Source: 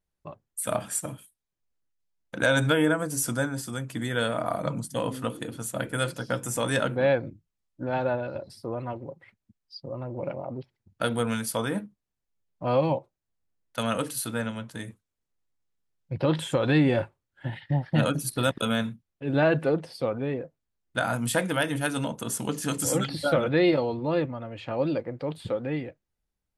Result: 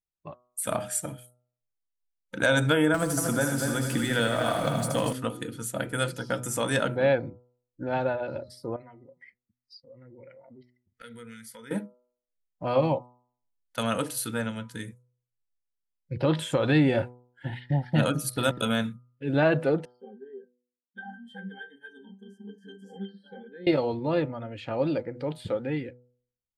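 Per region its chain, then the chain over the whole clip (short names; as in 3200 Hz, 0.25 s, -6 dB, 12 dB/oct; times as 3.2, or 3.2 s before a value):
2.94–5.13 G.711 law mismatch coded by mu + multi-head echo 78 ms, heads first and third, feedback 52%, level -8 dB + three-band squash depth 70%
8.76–11.71 bell 2000 Hz +12 dB 0.22 oct + compressor 2.5:1, threshold -49 dBFS
19.85–23.67 brick-wall FIR high-pass 150 Hz + octave resonator G, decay 0.2 s
whole clip: spectral noise reduction 15 dB; de-hum 123.2 Hz, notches 11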